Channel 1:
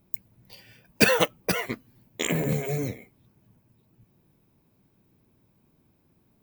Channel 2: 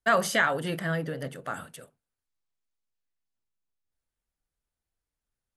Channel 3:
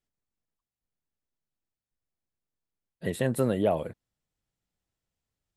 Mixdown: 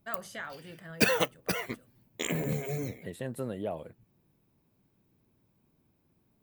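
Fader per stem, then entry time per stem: -5.5 dB, -16.5 dB, -10.0 dB; 0.00 s, 0.00 s, 0.00 s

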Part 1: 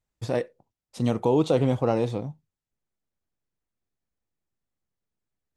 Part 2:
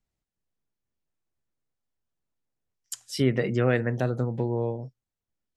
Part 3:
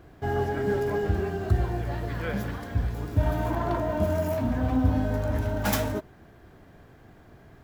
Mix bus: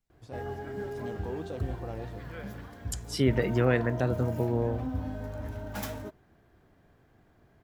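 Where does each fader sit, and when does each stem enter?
-17.5 dB, -1.5 dB, -10.5 dB; 0.00 s, 0.00 s, 0.10 s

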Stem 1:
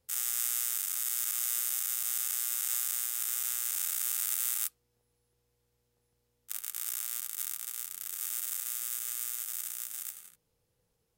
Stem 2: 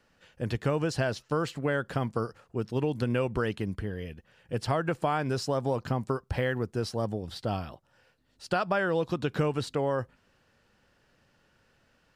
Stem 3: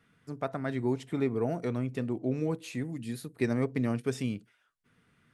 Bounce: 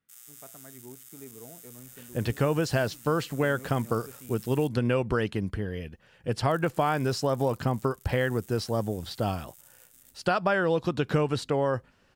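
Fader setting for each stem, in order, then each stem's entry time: -17.5 dB, +2.5 dB, -17.5 dB; 0.00 s, 1.75 s, 0.00 s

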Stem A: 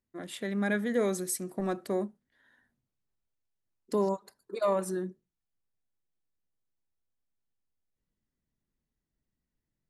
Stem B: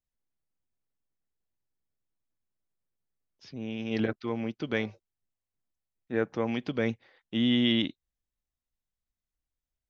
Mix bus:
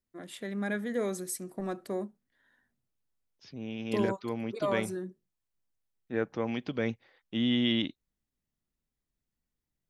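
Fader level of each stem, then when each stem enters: -3.5 dB, -2.5 dB; 0.00 s, 0.00 s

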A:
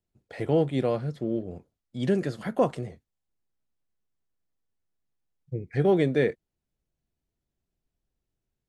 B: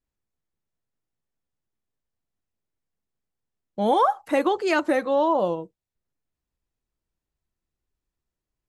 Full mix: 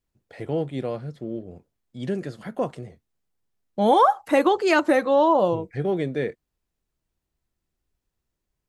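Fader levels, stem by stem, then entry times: -3.0 dB, +3.0 dB; 0.00 s, 0.00 s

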